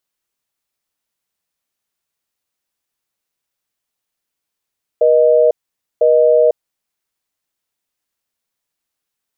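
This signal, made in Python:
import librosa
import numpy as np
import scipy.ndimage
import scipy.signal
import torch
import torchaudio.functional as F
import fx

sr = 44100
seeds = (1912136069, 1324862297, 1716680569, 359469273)

y = fx.call_progress(sr, length_s=1.77, kind='busy tone', level_db=-10.5)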